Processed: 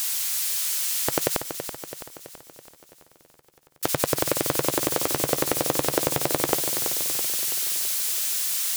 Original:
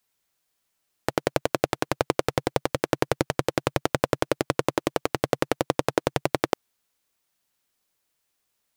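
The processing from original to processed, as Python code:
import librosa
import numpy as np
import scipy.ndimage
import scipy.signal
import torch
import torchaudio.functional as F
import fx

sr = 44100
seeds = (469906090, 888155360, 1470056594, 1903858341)

y = x + 0.5 * 10.0 ** (-14.5 / 20.0) * np.diff(np.sign(x), prepend=np.sign(x[:1]))
y = fx.high_shelf(y, sr, hz=10000.0, db=-10.5)
y = fx.gate_flip(y, sr, shuts_db=-18.0, range_db=-41, at=(1.34, 3.83))
y = fx.echo_feedback(y, sr, ms=330, feedback_pct=56, wet_db=-9.0)
y = y * librosa.db_to_amplitude(-1.5)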